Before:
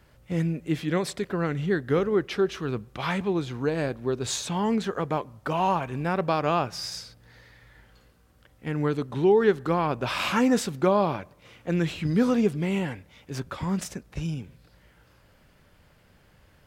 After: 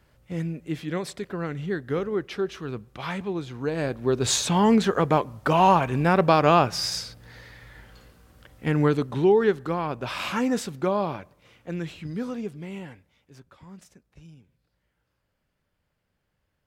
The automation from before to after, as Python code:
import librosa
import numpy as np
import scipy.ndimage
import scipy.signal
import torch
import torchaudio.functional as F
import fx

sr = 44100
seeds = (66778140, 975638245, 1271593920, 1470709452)

y = fx.gain(x, sr, db=fx.line((3.53, -3.5), (4.28, 6.5), (8.68, 6.5), (9.75, -3.0), (11.21, -3.0), (12.39, -10.0), (12.93, -10.0), (13.46, -18.0)))